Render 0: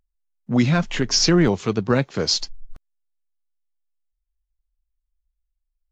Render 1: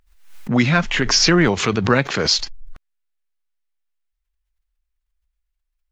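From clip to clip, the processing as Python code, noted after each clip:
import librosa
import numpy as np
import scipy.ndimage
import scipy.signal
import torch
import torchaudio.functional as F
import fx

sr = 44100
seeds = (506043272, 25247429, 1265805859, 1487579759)

y = fx.peak_eq(x, sr, hz=1900.0, db=8.5, octaves=2.2)
y = fx.pre_swell(y, sr, db_per_s=86.0)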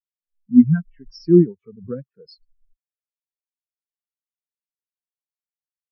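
y = fx.spectral_expand(x, sr, expansion=4.0)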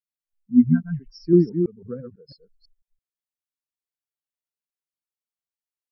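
y = fx.reverse_delay(x, sr, ms=166, wet_db=-6.5)
y = F.gain(torch.from_numpy(y), -4.0).numpy()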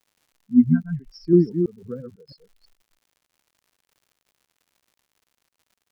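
y = fx.dmg_crackle(x, sr, seeds[0], per_s=140.0, level_db=-50.0)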